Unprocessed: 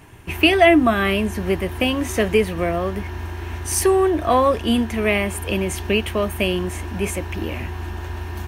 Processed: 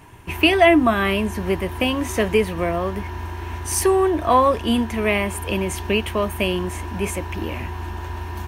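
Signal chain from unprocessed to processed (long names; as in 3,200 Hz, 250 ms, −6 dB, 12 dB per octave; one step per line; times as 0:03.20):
parametric band 970 Hz +7.5 dB 0.24 octaves
level −1 dB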